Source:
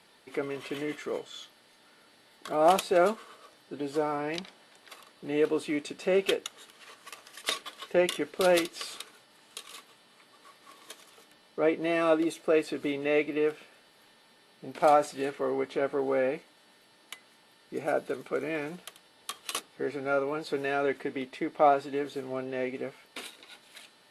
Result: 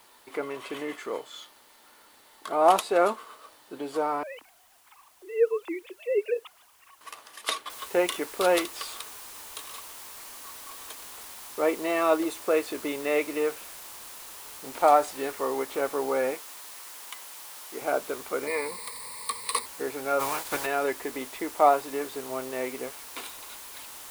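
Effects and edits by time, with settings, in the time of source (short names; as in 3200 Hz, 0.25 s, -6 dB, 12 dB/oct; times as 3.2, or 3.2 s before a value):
4.23–7.01 sine-wave speech
7.7 noise floor step -62 dB -45 dB
16.34–17.82 HPF 440 Hz 6 dB/oct
18.47–19.66 ripple EQ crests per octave 0.94, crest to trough 15 dB
20.19–20.65 spectral limiter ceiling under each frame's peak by 19 dB
whole clip: fifteen-band EQ 160 Hz -10 dB, 1000 Hz +8 dB, 10000 Hz +3 dB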